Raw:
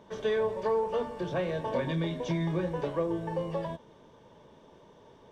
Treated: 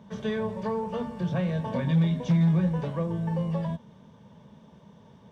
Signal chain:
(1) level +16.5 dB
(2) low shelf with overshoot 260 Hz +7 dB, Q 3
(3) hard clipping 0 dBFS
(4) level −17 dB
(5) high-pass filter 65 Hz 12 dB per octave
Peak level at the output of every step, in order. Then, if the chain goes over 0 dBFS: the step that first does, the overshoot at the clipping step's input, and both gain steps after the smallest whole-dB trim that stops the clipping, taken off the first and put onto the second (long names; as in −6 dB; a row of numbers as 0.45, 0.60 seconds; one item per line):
−1.5, +3.0, 0.0, −17.0, −14.5 dBFS
step 2, 3.0 dB
step 1 +13.5 dB, step 4 −14 dB